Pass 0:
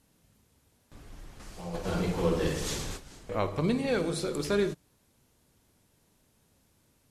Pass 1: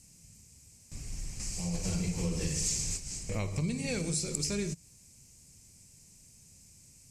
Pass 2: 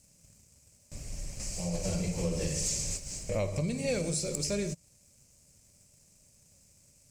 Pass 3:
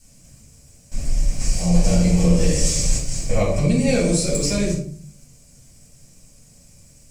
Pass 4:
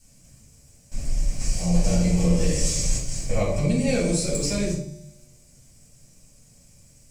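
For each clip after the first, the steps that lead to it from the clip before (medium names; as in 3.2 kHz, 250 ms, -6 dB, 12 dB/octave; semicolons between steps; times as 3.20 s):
FFT filter 170 Hz 0 dB, 290 Hz -10 dB, 1.5 kHz -16 dB, 2.4 kHz 0 dB, 3.5 kHz -11 dB, 5 kHz +6 dB, 7.9 kHz +12 dB, 11 kHz -3 dB; compression 4:1, threshold -39 dBFS, peak gain reduction 11.5 dB; trim +8.5 dB
peaking EQ 580 Hz +13.5 dB 0.41 oct; waveshaping leveller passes 1; trim -4 dB
reverberation RT60 0.45 s, pre-delay 3 ms, DRR -8 dB
feedback comb 120 Hz, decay 1.3 s, harmonics odd, mix 70%; trim +6 dB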